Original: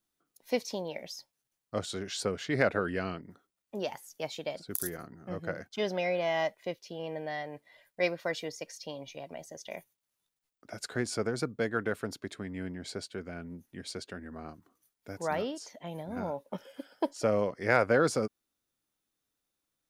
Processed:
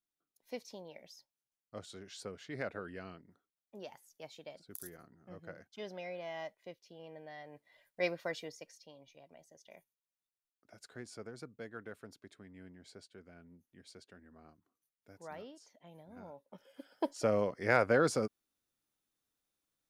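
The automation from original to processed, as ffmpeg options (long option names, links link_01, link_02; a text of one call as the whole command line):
ffmpeg -i in.wav -af "volume=8.5dB,afade=type=in:start_time=7.36:duration=0.76:silence=0.354813,afade=type=out:start_time=8.12:duration=0.74:silence=0.266073,afade=type=in:start_time=16.56:duration=0.55:silence=0.237137" out.wav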